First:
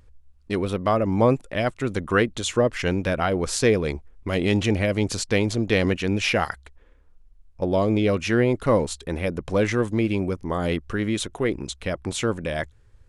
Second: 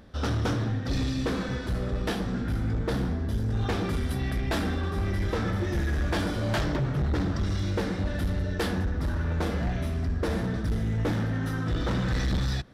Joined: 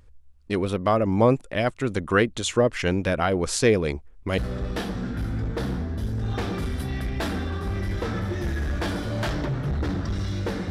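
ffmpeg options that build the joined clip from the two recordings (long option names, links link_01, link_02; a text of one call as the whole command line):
ffmpeg -i cue0.wav -i cue1.wav -filter_complex "[0:a]apad=whole_dur=10.7,atrim=end=10.7,atrim=end=4.382[link_01];[1:a]atrim=start=1.688:end=8.01[link_02];[link_01][link_02]acrossfade=duration=0.004:curve1=hsin:curve2=hsin" out.wav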